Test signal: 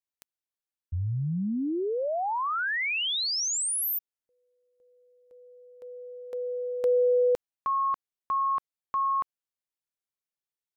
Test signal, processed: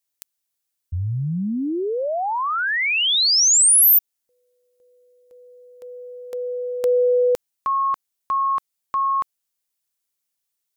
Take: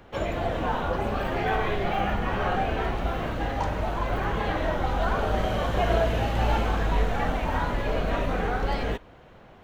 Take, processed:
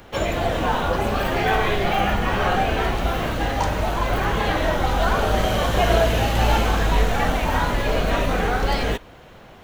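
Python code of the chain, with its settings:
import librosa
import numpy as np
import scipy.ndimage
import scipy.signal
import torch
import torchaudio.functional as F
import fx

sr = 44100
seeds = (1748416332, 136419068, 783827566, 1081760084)

y = fx.high_shelf(x, sr, hz=3900.0, db=11.5)
y = y * 10.0 ** (5.0 / 20.0)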